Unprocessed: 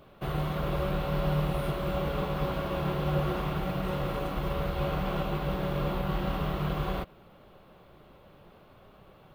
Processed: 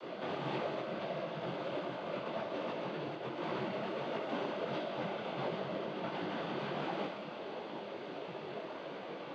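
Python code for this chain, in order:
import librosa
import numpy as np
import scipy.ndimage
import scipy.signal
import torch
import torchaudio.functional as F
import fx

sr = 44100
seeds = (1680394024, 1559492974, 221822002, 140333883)

p1 = scipy.signal.sosfilt(scipy.signal.butter(4, 220.0, 'highpass', fs=sr, output='sos'), x)
p2 = fx.peak_eq(p1, sr, hz=1200.0, db=-5.0, octaves=0.78)
p3 = fx.over_compress(p2, sr, threshold_db=-44.0, ratio=-1.0)
p4 = fx.noise_vocoder(p3, sr, seeds[0], bands=16)
p5 = fx.air_absorb(p4, sr, metres=130.0)
p6 = p5 + fx.echo_thinned(p5, sr, ms=63, feedback_pct=81, hz=580.0, wet_db=-7, dry=0)
p7 = fx.detune_double(p6, sr, cents=50)
y = p7 * 10.0 ** (9.5 / 20.0)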